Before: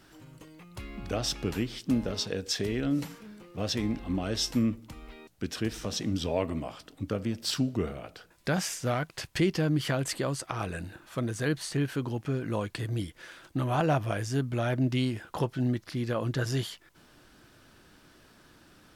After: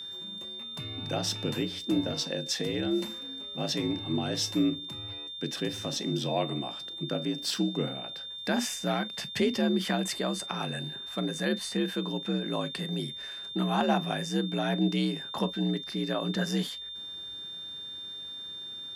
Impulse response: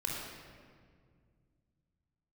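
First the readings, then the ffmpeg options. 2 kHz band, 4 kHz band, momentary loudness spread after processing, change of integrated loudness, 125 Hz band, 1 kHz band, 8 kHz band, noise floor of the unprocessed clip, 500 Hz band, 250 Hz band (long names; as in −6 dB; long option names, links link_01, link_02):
0.0 dB, +6.0 dB, 10 LU, 0.0 dB, −4.5 dB, +1.5 dB, 0.0 dB, −59 dBFS, 0.0 dB, +1.0 dB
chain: -filter_complex "[0:a]afreqshift=57,asplit=2[link_01][link_02];[1:a]atrim=start_sample=2205,atrim=end_sample=3969,asetrate=74970,aresample=44100[link_03];[link_02][link_03]afir=irnorm=-1:irlink=0,volume=-8dB[link_04];[link_01][link_04]amix=inputs=2:normalize=0,aeval=exprs='val(0)+0.0158*sin(2*PI*3600*n/s)':channel_layout=same,volume=-2dB"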